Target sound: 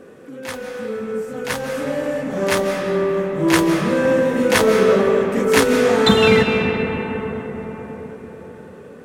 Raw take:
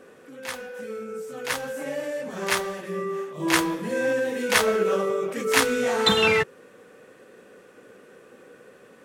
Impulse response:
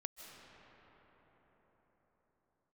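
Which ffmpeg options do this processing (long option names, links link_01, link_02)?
-filter_complex "[0:a]lowshelf=frequency=480:gain=10.5[link_01];[1:a]atrim=start_sample=2205[link_02];[link_01][link_02]afir=irnorm=-1:irlink=0,volume=6.5dB"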